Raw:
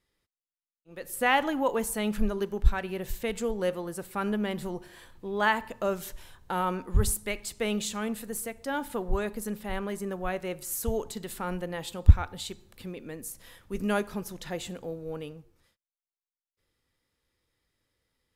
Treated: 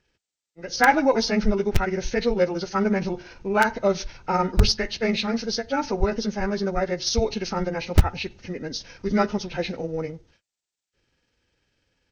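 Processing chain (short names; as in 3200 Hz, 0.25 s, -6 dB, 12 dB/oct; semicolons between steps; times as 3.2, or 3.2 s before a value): nonlinear frequency compression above 1200 Hz 1.5:1; added harmonics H 2 -13 dB, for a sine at -4.5 dBFS; in parallel at -4 dB: wrapped overs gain 13.5 dB; on the sum: notch 1100 Hz, Q 6.1; granular stretch 0.66×, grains 99 ms; gain +5 dB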